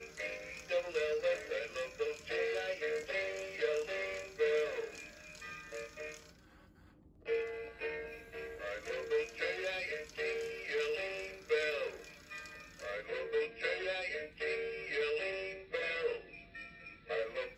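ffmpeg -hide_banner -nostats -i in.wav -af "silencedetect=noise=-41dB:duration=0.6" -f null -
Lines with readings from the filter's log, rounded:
silence_start: 6.17
silence_end: 7.26 | silence_duration: 1.10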